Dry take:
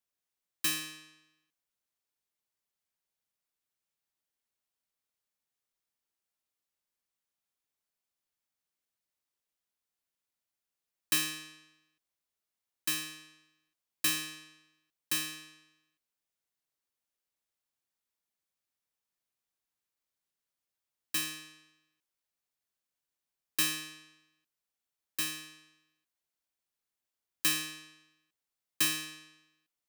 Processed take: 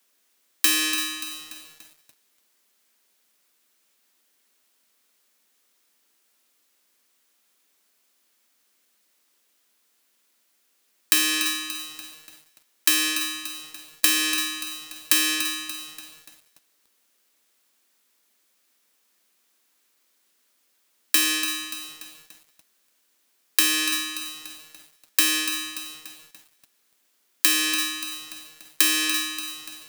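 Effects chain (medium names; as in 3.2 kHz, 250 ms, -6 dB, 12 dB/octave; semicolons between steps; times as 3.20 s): steep high-pass 200 Hz 96 dB/octave; peaking EQ 790 Hz -4 dB 0.87 oct; on a send: thinning echo 336 ms, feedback 25%, high-pass 850 Hz, level -22 dB; on the sum: compression 16:1, threshold -36 dBFS, peak gain reduction 13.5 dB; loudness maximiser +22.5 dB; bit-crushed delay 290 ms, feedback 55%, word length 6-bit, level -10 dB; trim -1 dB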